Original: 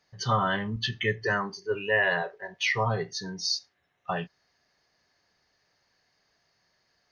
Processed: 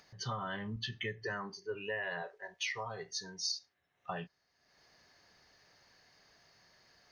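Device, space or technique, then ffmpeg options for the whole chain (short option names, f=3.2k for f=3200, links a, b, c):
upward and downward compression: -filter_complex "[0:a]acompressor=mode=upward:threshold=-46dB:ratio=2.5,acompressor=threshold=-28dB:ratio=5,asettb=1/sr,asplit=3[a][b][c];[a]atrim=end=2.264[d];[b]atrim=start=2.26:end=3.52,asetpts=PTS-STARTPTS,afade=t=in:d=0.004:c=qsin,afade=t=out:st=1.256:d=0.004:c=qsin,equalizer=f=125:t=o:w=1:g=-8,equalizer=f=250:t=o:w=1:g=-7,equalizer=f=8k:t=o:w=1:g=8[e];[c]atrim=start=3.516[f];[d][e]acrossfade=d=0.004:c1=hsin:c2=qsin[g];[g][f]acrossfade=d=0.004:c1=qsin:c2=hsin,volume=-7dB"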